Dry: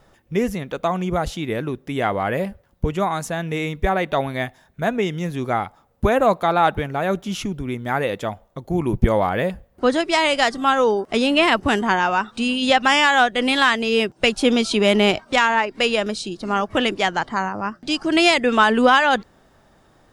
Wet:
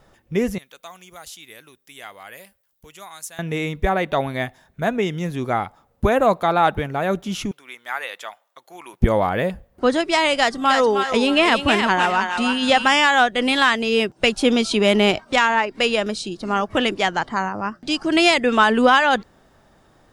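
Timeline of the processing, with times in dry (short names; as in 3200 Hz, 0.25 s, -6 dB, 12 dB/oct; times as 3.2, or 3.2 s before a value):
0.58–3.39 pre-emphasis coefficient 0.97
7.51–9.01 HPF 1200 Hz
10.34–12.89 thinning echo 0.312 s, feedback 34%, high-pass 1000 Hz, level -3 dB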